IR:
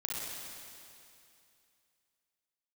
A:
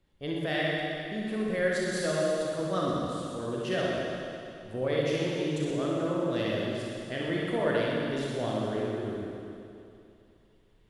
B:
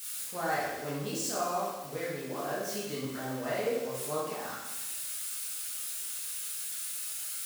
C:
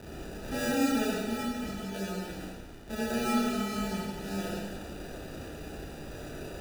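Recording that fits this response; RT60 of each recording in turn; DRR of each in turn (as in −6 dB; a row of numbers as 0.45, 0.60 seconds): A; 2.6, 1.1, 1.5 seconds; −5.0, −8.0, −6.0 decibels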